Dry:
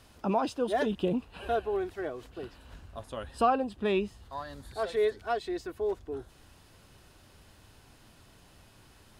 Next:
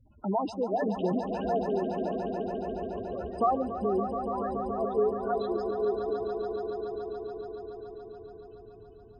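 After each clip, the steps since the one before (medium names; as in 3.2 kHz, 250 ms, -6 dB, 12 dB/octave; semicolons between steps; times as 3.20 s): spectral gate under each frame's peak -10 dB strong; echo with a slow build-up 142 ms, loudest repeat 5, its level -10 dB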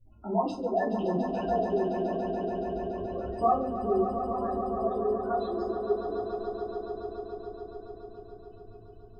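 simulated room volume 140 m³, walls furnished, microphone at 3.2 m; trim -8 dB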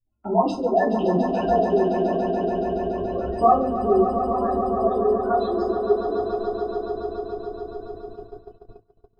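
hum notches 50/100/150/200 Hz; gate -45 dBFS, range -27 dB; trim +8 dB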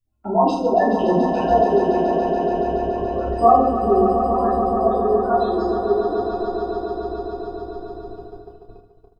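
reverse bouncing-ball echo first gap 30 ms, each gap 1.6×, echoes 5; trim +1.5 dB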